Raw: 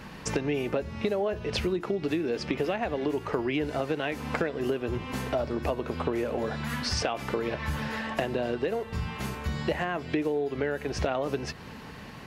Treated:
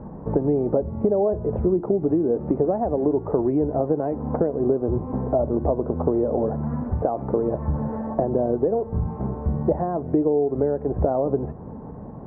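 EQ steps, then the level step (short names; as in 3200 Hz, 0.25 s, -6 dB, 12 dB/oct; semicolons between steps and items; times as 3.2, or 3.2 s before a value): inverse Chebyshev low-pass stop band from 4700 Hz, stop band 80 dB; +8.0 dB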